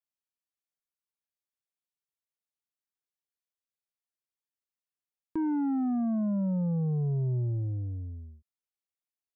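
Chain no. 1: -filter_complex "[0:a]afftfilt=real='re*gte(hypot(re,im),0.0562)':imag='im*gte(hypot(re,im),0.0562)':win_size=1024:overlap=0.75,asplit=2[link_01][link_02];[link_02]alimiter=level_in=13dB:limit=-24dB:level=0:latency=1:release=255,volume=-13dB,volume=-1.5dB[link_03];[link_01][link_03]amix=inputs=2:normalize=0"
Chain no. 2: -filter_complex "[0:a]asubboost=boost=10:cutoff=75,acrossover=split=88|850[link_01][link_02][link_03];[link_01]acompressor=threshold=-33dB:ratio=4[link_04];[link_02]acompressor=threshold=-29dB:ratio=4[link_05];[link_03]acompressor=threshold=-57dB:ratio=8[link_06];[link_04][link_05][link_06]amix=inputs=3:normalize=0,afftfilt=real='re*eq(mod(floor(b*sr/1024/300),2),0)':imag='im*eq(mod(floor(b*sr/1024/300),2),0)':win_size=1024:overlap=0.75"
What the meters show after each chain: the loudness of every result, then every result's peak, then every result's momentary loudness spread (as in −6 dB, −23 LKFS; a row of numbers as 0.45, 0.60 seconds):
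−28.0, −30.5 LKFS; −23.5, −23.0 dBFS; 9, 12 LU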